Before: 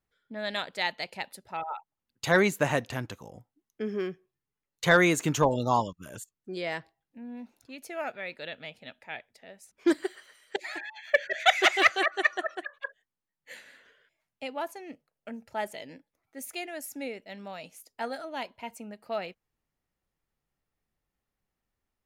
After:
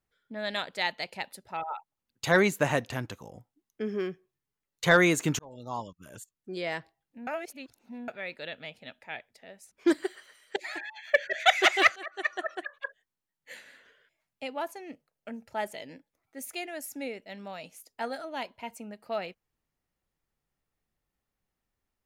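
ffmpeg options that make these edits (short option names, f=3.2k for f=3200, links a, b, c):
-filter_complex "[0:a]asplit=5[a][b][c][d][e];[a]atrim=end=5.39,asetpts=PTS-STARTPTS,afade=t=out:st=5.386:d=0.004:c=hsin[f];[b]atrim=start=5.39:end=7.272,asetpts=PTS-STARTPTS,afade=t=in:d=1.22[g];[c]atrim=start=7.268:end=8.082,asetpts=PTS-STARTPTS,areverse[h];[d]atrim=start=8.078:end=11.96,asetpts=PTS-STARTPTS,afade=t=out:st=3.878:d=0.004:c=hsin:silence=0.0841395[i];[e]atrim=start=11.96,asetpts=PTS-STARTPTS,afade=t=in:d=0.59:silence=0.0841395[j];[f][g]concat=n=2:v=0:a=1[k];[k][h]acrossfade=d=0.004:c1=hsin:c2=hsin[l];[i][j]concat=n=2:v=0:a=1[m];[l][m]acrossfade=d=0.004:c1=hsin:c2=hsin"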